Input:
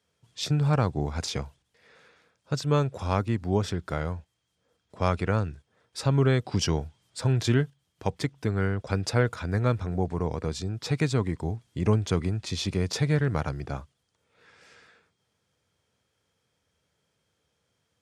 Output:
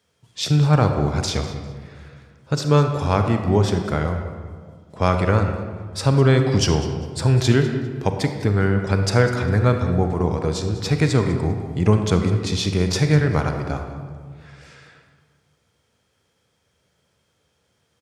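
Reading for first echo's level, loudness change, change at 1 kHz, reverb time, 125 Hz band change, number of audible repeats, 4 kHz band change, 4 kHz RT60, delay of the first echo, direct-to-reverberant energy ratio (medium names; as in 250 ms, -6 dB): -16.5 dB, +7.5 dB, +8.0 dB, 1.8 s, +8.0 dB, 2, +7.0 dB, 0.95 s, 200 ms, 5.5 dB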